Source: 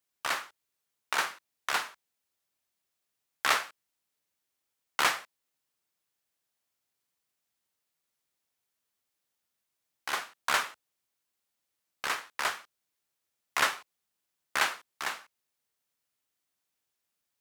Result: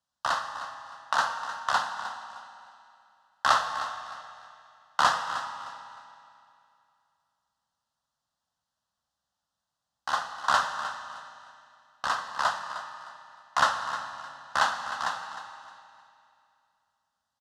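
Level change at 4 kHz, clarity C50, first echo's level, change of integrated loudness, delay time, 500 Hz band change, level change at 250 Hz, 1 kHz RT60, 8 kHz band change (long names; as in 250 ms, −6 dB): +0.5 dB, 6.5 dB, −12.5 dB, +2.0 dB, 308 ms, +4.0 dB, +1.0 dB, 2.6 s, −2.5 dB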